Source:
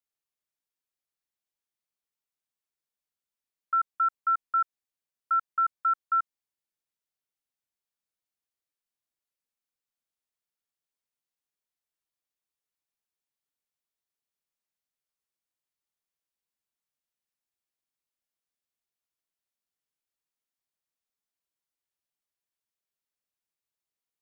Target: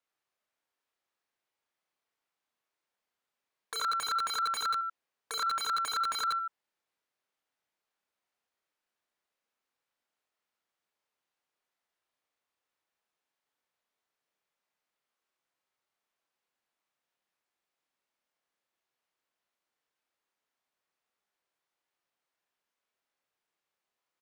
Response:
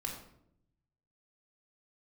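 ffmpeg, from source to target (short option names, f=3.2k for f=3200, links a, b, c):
-filter_complex "[0:a]aecho=1:1:30|69|119.7|185.6|271.3:0.631|0.398|0.251|0.158|0.1,aeval=exprs='(mod(29.9*val(0)+1,2)-1)/29.9':c=same,asplit=2[a][b];[b]highpass=f=720:p=1,volume=18dB,asoftclip=type=tanh:threshold=-16dB[c];[a][c]amix=inputs=2:normalize=0,lowpass=f=1.2k:p=1,volume=-6dB"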